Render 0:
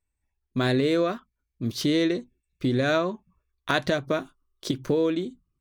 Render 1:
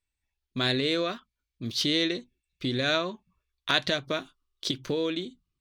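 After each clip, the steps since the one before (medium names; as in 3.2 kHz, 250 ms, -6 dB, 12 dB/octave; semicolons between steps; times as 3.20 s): peaking EQ 3.6 kHz +12.5 dB 1.8 oct; trim -6 dB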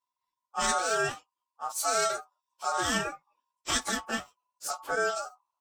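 frequency axis rescaled in octaves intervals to 123%; ring modulator 1 kHz; trim +4 dB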